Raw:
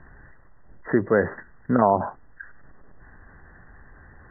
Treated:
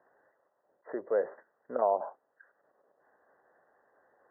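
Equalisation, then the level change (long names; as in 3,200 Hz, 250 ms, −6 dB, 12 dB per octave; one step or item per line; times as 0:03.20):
four-pole ladder band-pass 640 Hz, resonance 50%
0.0 dB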